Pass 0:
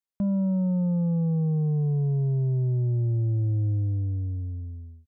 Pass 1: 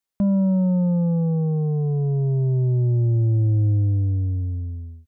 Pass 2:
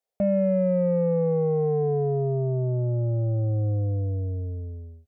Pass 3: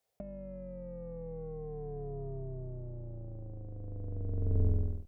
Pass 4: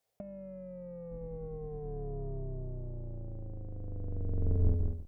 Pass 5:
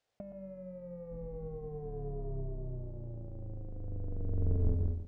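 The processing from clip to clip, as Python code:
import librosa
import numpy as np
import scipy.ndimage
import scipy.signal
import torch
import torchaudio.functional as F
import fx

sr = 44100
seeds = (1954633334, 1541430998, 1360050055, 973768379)

y1 = fx.peak_eq(x, sr, hz=150.0, db=-5.0, octaves=0.45)
y1 = y1 * 10.0 ** (7.0 / 20.0)
y2 = fx.band_shelf(y1, sr, hz=570.0, db=15.5, octaves=1.1)
y2 = fx.cheby_harmonics(y2, sr, harmonics=(5,), levels_db=(-32,), full_scale_db=-9.0)
y2 = y2 * 10.0 ** (-6.5 / 20.0)
y3 = fx.octave_divider(y2, sr, octaves=2, level_db=-1.0)
y3 = fx.over_compress(y3, sr, threshold_db=-30.0, ratio=-0.5)
y3 = y3 * 10.0 ** (-4.0 / 20.0)
y4 = fx.octave_divider(y3, sr, octaves=2, level_db=-6.0)
y5 = y4 + 10.0 ** (-10.0 / 20.0) * np.pad(y4, (int(119 * sr / 1000.0), 0))[:len(y4)]
y5 = np.interp(np.arange(len(y5)), np.arange(len(y5))[::3], y5[::3])
y5 = y5 * 10.0 ** (-1.0 / 20.0)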